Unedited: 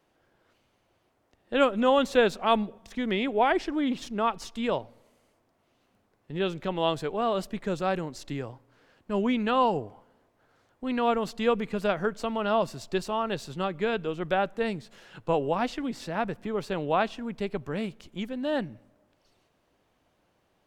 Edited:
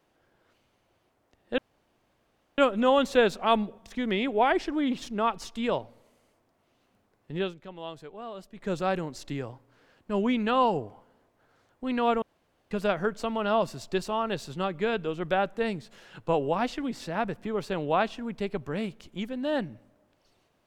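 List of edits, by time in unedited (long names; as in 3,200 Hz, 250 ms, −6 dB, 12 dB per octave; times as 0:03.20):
0:01.58: splice in room tone 1.00 s
0:06.39–0:07.71: duck −13 dB, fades 0.16 s
0:11.22–0:11.71: fill with room tone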